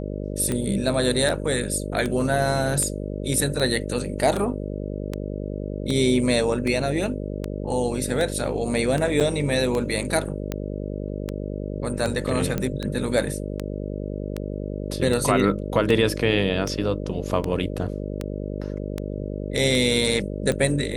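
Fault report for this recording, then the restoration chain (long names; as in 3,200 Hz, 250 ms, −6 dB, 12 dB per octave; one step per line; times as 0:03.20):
mains buzz 50 Hz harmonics 12 −30 dBFS
scratch tick 78 rpm −13 dBFS
0:09.20–0:09.21: drop-out 7.3 ms
0:12.58: click −12 dBFS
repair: click removal
hum removal 50 Hz, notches 12
repair the gap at 0:09.20, 7.3 ms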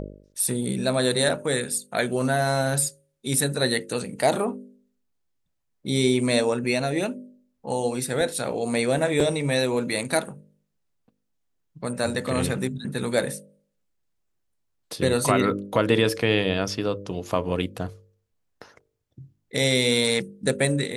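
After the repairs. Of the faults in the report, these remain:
none of them is left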